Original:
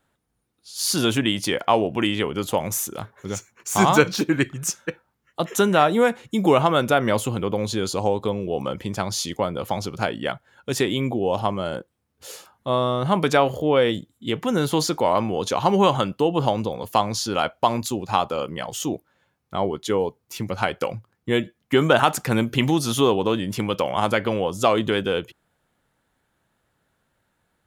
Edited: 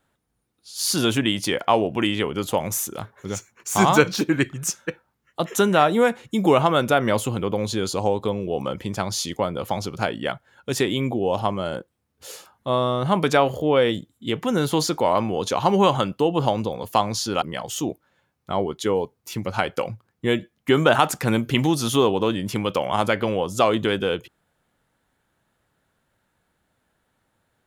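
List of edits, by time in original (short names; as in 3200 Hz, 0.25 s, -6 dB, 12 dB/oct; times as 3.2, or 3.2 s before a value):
17.42–18.46 cut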